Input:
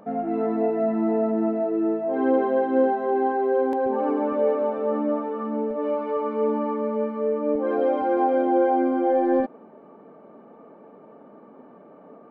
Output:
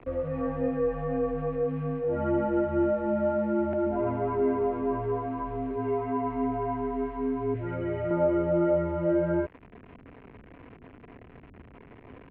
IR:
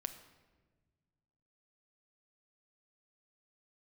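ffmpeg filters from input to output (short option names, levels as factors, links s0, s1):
-filter_complex "[0:a]acrossover=split=520[s0][s1];[s0]acompressor=threshold=0.0126:ratio=4[s2];[s1]acrusher=bits=7:mix=0:aa=0.000001[s3];[s2][s3]amix=inputs=2:normalize=0,highpass=f=220:t=q:w=0.5412,highpass=f=220:t=q:w=1.307,lowpass=f=2800:t=q:w=0.5176,lowpass=f=2800:t=q:w=0.7071,lowpass=f=2800:t=q:w=1.932,afreqshift=-180,asettb=1/sr,asplit=3[s4][s5][s6];[s4]atrim=end=7.544[s7];[s5]atrim=start=7.54:end=8.11,asetpts=PTS-STARTPTS,afade=t=in:d=0.004:c=qsin,afade=t=out:st=0.566:d=0.004:c=qsin,equalizer=f=125:t=o:w=1:g=7,equalizer=f=250:t=o:w=1:g=-11,equalizer=f=1000:t=o:w=1:g=-10,equalizer=f=2000:t=o:w=1:g=6[s8];[s6]atrim=start=8.106[s9];[s7][s8]acrossfade=d=0.004:c1=hsin:c2=qsin[s10];[s10][s9]acrossfade=d=0.004:c1=qsin:c2=hsin"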